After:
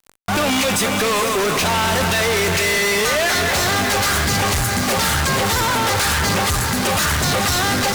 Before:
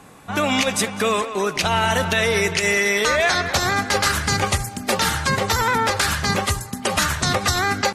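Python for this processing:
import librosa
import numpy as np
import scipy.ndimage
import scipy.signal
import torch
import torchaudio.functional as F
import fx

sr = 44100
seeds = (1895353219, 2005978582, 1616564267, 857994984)

y = fx.echo_diffused(x, sr, ms=476, feedback_pct=48, wet_db=-13)
y = fx.fuzz(y, sr, gain_db=41.0, gate_db=-36.0)
y = y * librosa.db_to_amplitude(-3.5)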